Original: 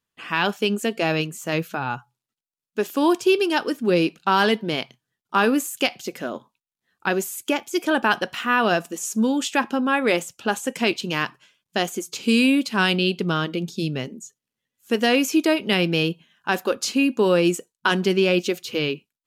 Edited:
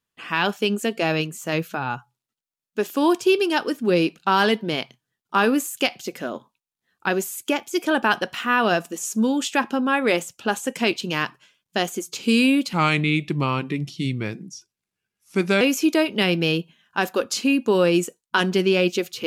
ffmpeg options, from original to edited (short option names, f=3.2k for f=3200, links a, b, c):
-filter_complex "[0:a]asplit=3[a][b][c];[a]atrim=end=12.734[d];[b]atrim=start=12.73:end=15.12,asetpts=PTS-STARTPTS,asetrate=36603,aresample=44100[e];[c]atrim=start=15.116[f];[d][e]acrossfade=d=0.004:c1=hsin:c2=hsin[g];[g][f]acrossfade=d=0.004:c1=hsin:c2=hsin"